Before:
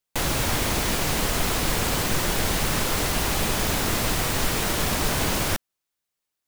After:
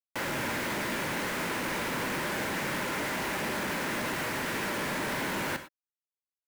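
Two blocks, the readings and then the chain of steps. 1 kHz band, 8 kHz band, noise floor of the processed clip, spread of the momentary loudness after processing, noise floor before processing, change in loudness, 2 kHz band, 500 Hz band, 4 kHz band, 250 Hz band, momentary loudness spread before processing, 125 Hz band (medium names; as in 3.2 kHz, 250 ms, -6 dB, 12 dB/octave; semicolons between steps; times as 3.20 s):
-5.0 dB, -13.0 dB, under -85 dBFS, 0 LU, -84 dBFS, -8.0 dB, -2.5 dB, -5.5 dB, -10.5 dB, -6.0 dB, 0 LU, -13.0 dB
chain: cabinet simulation 260–2200 Hz, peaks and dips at 310 Hz -3 dB, 450 Hz -6 dB, 720 Hz -10 dB, 1.2 kHz -7 dB; companded quantiser 2-bit; gated-style reverb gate 130 ms flat, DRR 9 dB; trim -6 dB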